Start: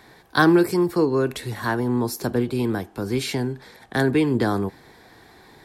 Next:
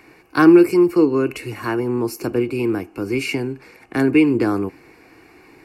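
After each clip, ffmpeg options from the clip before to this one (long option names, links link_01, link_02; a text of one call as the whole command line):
ffmpeg -i in.wav -af "superequalizer=6b=2.82:7b=1.58:10b=1.58:12b=3.55:13b=0.316,volume=-2dB" out.wav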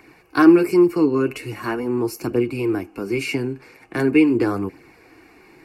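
ffmpeg -i in.wav -af "flanger=delay=0.1:depth=8.4:regen=-41:speed=0.42:shape=triangular,volume=2.5dB" out.wav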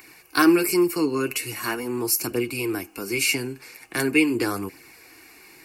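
ffmpeg -i in.wav -af "crystalizer=i=8.5:c=0,volume=-6.5dB" out.wav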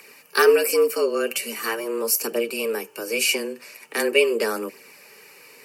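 ffmpeg -i in.wav -af "afreqshift=110,volume=1dB" out.wav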